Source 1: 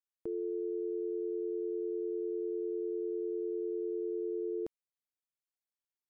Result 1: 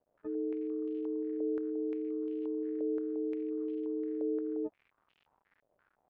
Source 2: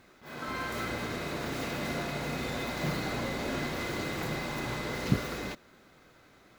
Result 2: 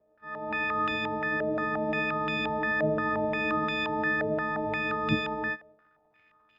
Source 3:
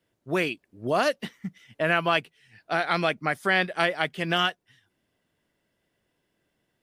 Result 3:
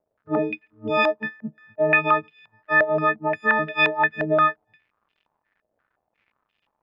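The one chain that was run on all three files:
every partial snapped to a pitch grid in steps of 6 semitones
dynamic equaliser 280 Hz, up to +8 dB, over −43 dBFS, Q 1
noise gate −49 dBFS, range −12 dB
surface crackle 220 per second −50 dBFS
high-frequency loss of the air 72 metres
low-pass on a step sequencer 5.7 Hz 600–2,900 Hz
level −4.5 dB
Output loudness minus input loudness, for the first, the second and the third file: +1.0, +5.0, +4.5 LU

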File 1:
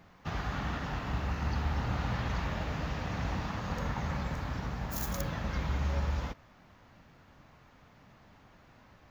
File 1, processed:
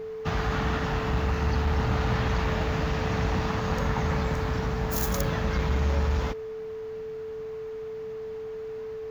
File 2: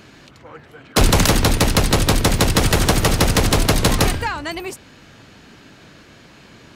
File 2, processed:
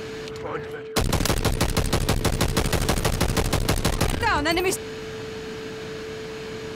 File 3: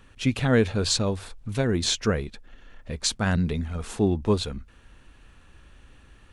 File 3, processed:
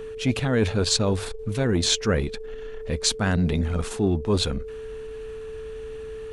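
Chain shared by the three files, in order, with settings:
reversed playback
downward compressor 5 to 1, threshold −26 dBFS
reversed playback
steady tone 440 Hz −41 dBFS
saturating transformer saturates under 220 Hz
level +8 dB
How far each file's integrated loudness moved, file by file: +6.5, −8.0, +1.5 LU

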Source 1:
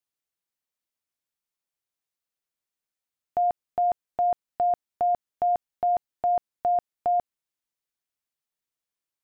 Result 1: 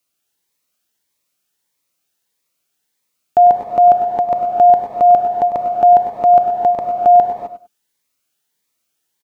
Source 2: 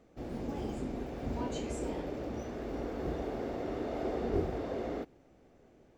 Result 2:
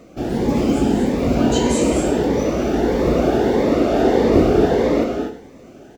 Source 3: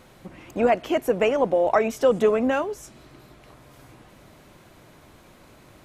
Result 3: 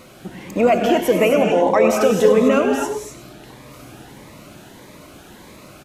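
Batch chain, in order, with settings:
low-shelf EQ 84 Hz −11.5 dB
in parallel at +2 dB: brickwall limiter −19 dBFS
on the sum: repeating echo 100 ms, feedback 18%, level −11 dB
reverb whose tail is shaped and stops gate 280 ms rising, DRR 3 dB
phaser whose notches keep moving one way rising 1.6 Hz
normalise the peak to −2 dBFS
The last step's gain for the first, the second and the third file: +8.5, +13.0, +2.5 decibels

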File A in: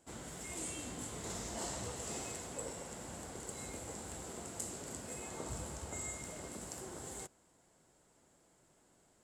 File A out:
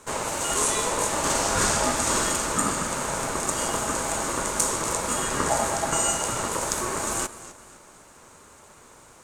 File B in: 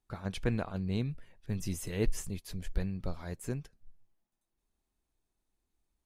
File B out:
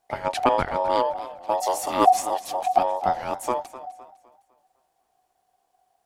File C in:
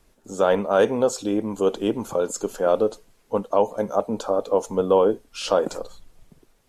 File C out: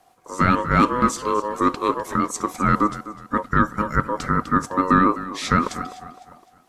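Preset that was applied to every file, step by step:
ring modulation 740 Hz
feedback echo with a swinging delay time 254 ms, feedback 38%, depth 93 cents, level −15.5 dB
normalise the peak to −3 dBFS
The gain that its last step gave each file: +21.5, +13.5, +4.0 decibels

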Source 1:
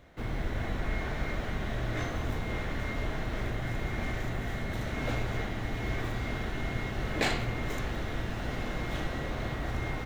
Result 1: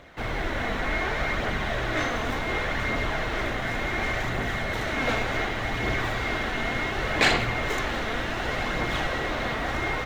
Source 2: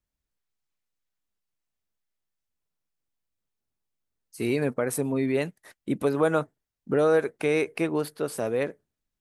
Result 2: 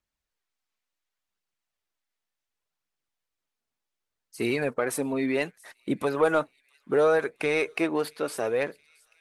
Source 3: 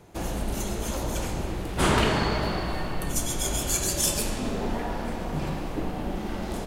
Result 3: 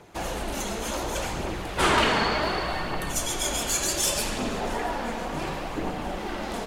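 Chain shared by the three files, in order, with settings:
mid-hump overdrive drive 11 dB, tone 4,700 Hz, clips at −9 dBFS
phase shifter 0.68 Hz, delay 4.6 ms, feedback 30%
delay with a high-pass on its return 673 ms, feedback 60%, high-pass 3,000 Hz, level −22.5 dB
loudness normalisation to −27 LKFS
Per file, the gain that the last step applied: +4.5, −2.0, −1.0 decibels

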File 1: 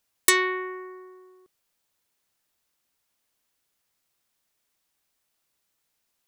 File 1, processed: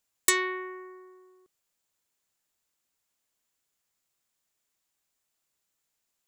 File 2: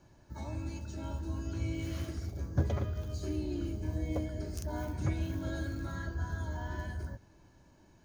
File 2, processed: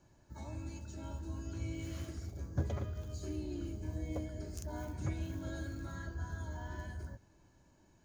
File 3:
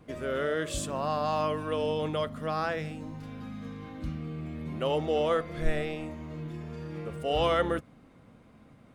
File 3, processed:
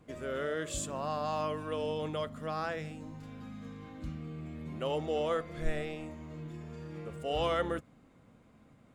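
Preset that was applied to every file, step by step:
parametric band 7,200 Hz +7.5 dB 0.22 octaves
level −5 dB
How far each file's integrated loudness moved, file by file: −3.5, −5.0, −5.0 LU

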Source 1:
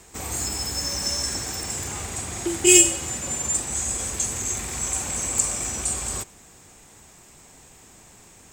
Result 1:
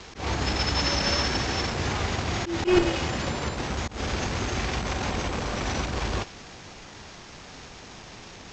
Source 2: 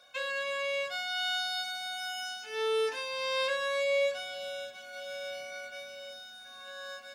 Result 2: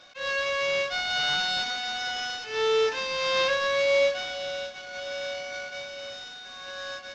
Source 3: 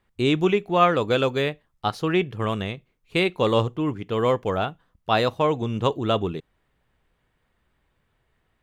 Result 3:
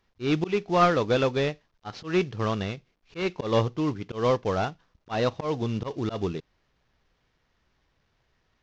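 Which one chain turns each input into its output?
variable-slope delta modulation 32 kbit/s
volume swells 141 ms
loudness normalisation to −27 LKFS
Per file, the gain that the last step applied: +7.5, +6.0, −1.5 decibels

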